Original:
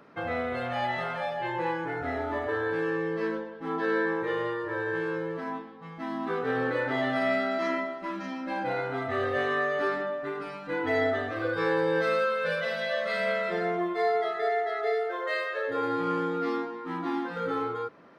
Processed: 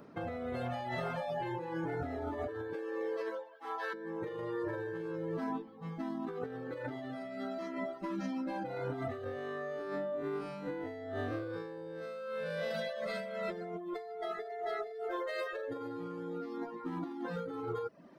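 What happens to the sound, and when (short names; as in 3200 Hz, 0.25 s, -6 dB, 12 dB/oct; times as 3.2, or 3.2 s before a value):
2.73–3.93 HPF 320 Hz -> 710 Hz 24 dB/oct
9.24–12.71 time blur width 0.123 s
whole clip: reverb removal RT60 0.61 s; bell 1900 Hz -11 dB 2.9 oct; negative-ratio compressor -40 dBFS, ratio -1; gain +1 dB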